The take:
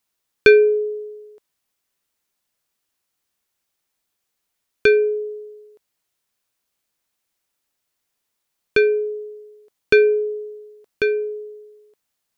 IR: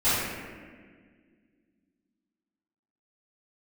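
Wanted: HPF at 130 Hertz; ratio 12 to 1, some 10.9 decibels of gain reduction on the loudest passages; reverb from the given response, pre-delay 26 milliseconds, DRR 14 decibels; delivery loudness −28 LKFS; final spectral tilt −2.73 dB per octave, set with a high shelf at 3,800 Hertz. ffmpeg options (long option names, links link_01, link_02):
-filter_complex "[0:a]highpass=130,highshelf=frequency=3800:gain=-7.5,acompressor=threshold=-18dB:ratio=12,asplit=2[link_01][link_02];[1:a]atrim=start_sample=2205,adelay=26[link_03];[link_02][link_03]afir=irnorm=-1:irlink=0,volume=-30dB[link_04];[link_01][link_04]amix=inputs=2:normalize=0,volume=-3.5dB"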